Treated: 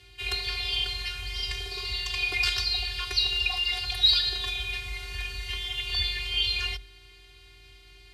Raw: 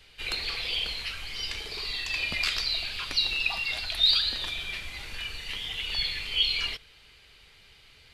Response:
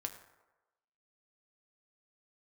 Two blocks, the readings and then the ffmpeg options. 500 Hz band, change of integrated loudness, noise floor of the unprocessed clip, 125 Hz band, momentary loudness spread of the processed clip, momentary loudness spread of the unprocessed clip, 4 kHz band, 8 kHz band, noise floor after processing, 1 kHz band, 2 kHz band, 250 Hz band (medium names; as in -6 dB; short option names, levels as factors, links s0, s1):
+1.0 dB, +1.0 dB, -56 dBFS, +7.5 dB, 10 LU, 11 LU, +1.0 dB, +1.0 dB, -53 dBFS, +1.5 dB, +1.5 dB, no reading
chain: -af "aeval=exprs='val(0)+0.00141*(sin(2*PI*60*n/s)+sin(2*PI*2*60*n/s)/2+sin(2*PI*3*60*n/s)/3+sin(2*PI*4*60*n/s)/4+sin(2*PI*5*60*n/s)/5)':c=same,afftfilt=real='hypot(re,im)*cos(PI*b)':imag='0':win_size=512:overlap=0.75,afreqshift=47,volume=1.68"